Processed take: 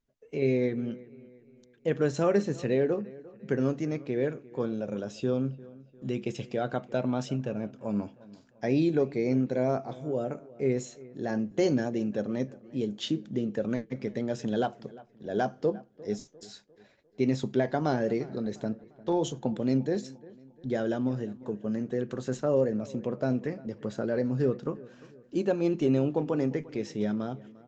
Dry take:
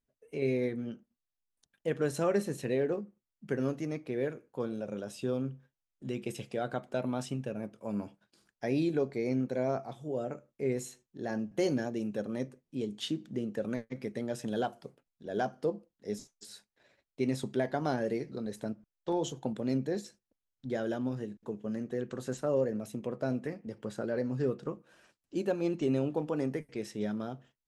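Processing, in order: bass shelf 480 Hz +3 dB; on a send: feedback echo behind a low-pass 350 ms, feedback 44%, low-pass 2.7 kHz, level -20.5 dB; on the sum: resampled via 16 kHz; trim +2.5 dB

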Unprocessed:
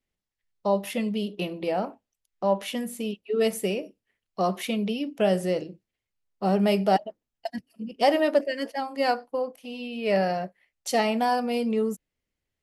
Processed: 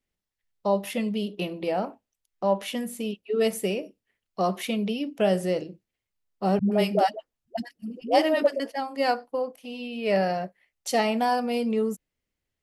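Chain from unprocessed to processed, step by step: 6.59–8.60 s: phase dispersion highs, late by 125 ms, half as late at 350 Hz

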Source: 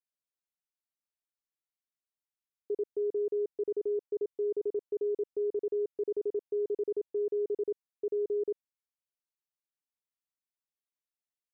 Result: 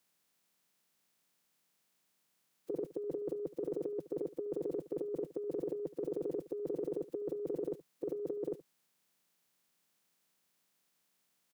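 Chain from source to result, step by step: spectral peaks clipped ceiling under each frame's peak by 18 dB; resonant low shelf 120 Hz -10 dB, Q 3; compressor with a negative ratio -39 dBFS, ratio -0.5; delay 73 ms -17 dB; trim +5.5 dB

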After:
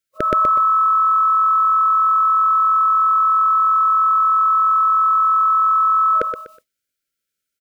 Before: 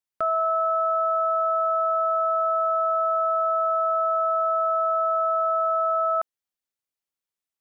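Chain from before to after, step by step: feedback delay 123 ms, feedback 27%, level -6 dB; FFT band-reject 630–1300 Hz; formant shift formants -3 st; trim +8.5 dB

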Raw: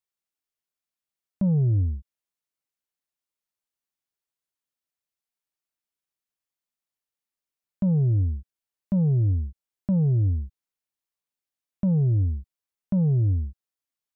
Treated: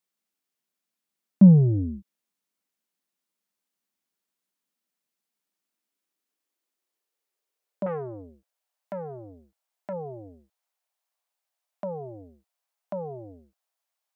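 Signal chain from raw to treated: high-pass sweep 200 Hz -> 690 Hz, 5.35–8.82 s; 7.86–9.93 s: transformer saturation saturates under 580 Hz; trim +4.5 dB

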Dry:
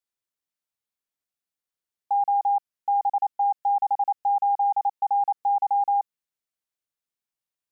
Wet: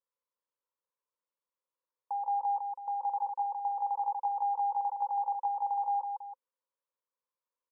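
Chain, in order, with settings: peak limiter -22.5 dBFS, peak gain reduction 4.5 dB; two resonant band-passes 720 Hz, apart 0.9 oct; on a send: multi-tap echo 65/155/325 ms -17/-5.5/-10.5 dB; 4.06–5.55 s: on the sum: three bands compressed up and down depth 70%; trim +8 dB

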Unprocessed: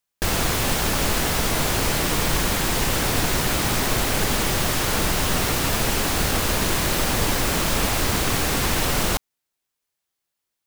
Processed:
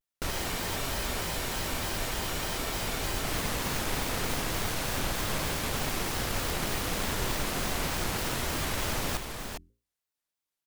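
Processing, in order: self-modulated delay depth 0.17 ms; hum notches 50/100/150/200/250/300/350/400/450 Hz; delay 411 ms -6.5 dB; spectral freeze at 0.32 s, 2.91 s; vibrato with a chosen wave square 3.3 Hz, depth 250 cents; trim -8.5 dB

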